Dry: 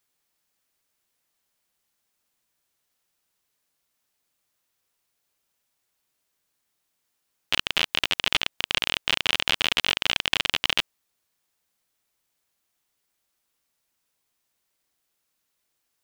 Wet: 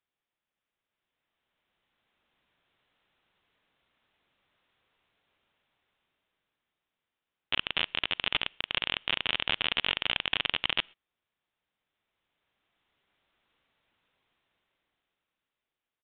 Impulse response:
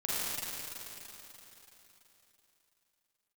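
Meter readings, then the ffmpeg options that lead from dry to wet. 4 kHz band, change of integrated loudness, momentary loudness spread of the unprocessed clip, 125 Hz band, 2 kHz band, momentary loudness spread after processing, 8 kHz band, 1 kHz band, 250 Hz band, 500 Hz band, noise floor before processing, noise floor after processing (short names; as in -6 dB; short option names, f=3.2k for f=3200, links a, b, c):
-5.5 dB, -5.5 dB, 3 LU, -5.0 dB, -5.0 dB, 4 LU, under -40 dB, -5.0 dB, -5.0 dB, -5.0 dB, -77 dBFS, under -85 dBFS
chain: -filter_complex "[0:a]dynaudnorm=f=310:g=11:m=16dB,asplit=2[a][b];[1:a]atrim=start_sample=2205,atrim=end_sample=6174[c];[b][c]afir=irnorm=-1:irlink=0,volume=-30.5dB[d];[a][d]amix=inputs=2:normalize=0,aresample=8000,aresample=44100,volume=-8dB"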